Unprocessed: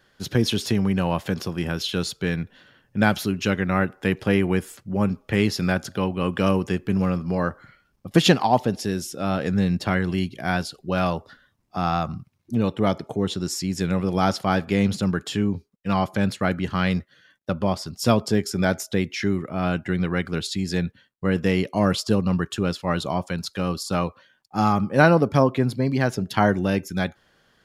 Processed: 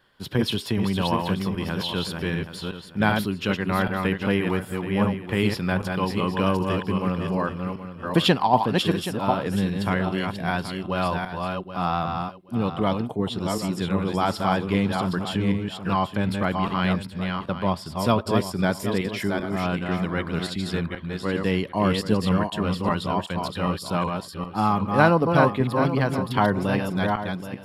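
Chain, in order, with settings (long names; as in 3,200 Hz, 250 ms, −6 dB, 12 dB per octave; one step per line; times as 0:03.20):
feedback delay that plays each chunk backwards 388 ms, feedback 41%, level −4 dB
thirty-one-band graphic EQ 1,000 Hz +8 dB, 3,150 Hz +4 dB, 6,300 Hz −12 dB
level −3 dB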